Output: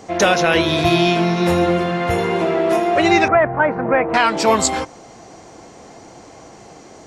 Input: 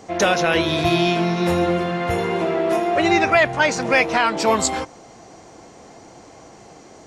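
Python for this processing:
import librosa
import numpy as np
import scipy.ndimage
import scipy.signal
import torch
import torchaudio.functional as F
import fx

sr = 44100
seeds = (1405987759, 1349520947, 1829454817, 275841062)

y = fx.lowpass(x, sr, hz=1600.0, slope=24, at=(3.28, 4.14))
y = F.gain(torch.from_numpy(y), 3.0).numpy()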